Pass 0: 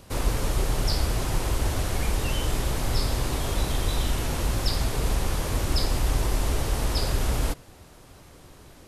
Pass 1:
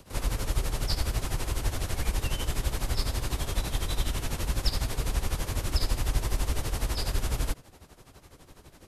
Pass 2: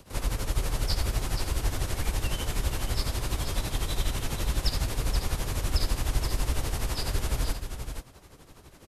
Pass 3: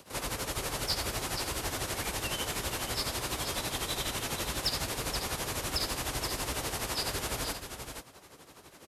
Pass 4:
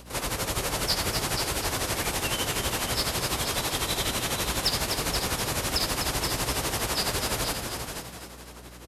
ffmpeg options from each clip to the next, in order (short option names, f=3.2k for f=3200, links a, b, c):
-filter_complex "[0:a]tremolo=f=12:d=0.76,acrossover=split=150|1300|3600[a][b][c][d];[b]asoftclip=type=tanh:threshold=-35.5dB[e];[a][e][c][d]amix=inputs=4:normalize=0"
-af "aecho=1:1:477:0.422"
-filter_complex "[0:a]highpass=f=340:p=1,asplit=2[a][b];[b]aeval=exprs='0.0447*(abs(mod(val(0)/0.0447+3,4)-2)-1)':c=same,volume=-11dB[c];[a][c]amix=inputs=2:normalize=0"
-filter_complex "[0:a]asplit=7[a][b][c][d][e][f][g];[b]adelay=250,afreqshift=60,volume=-7.5dB[h];[c]adelay=500,afreqshift=120,volume=-13.7dB[i];[d]adelay=750,afreqshift=180,volume=-19.9dB[j];[e]adelay=1000,afreqshift=240,volume=-26.1dB[k];[f]adelay=1250,afreqshift=300,volume=-32.3dB[l];[g]adelay=1500,afreqshift=360,volume=-38.5dB[m];[a][h][i][j][k][l][m]amix=inputs=7:normalize=0,aeval=exprs='val(0)+0.00251*(sin(2*PI*60*n/s)+sin(2*PI*2*60*n/s)/2+sin(2*PI*3*60*n/s)/3+sin(2*PI*4*60*n/s)/4+sin(2*PI*5*60*n/s)/5)':c=same,volume=5dB"